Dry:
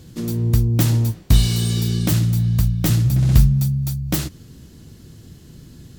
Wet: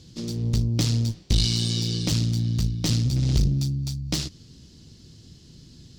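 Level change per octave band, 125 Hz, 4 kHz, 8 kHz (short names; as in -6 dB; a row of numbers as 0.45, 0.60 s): -7.0, +1.5, -3.0 dB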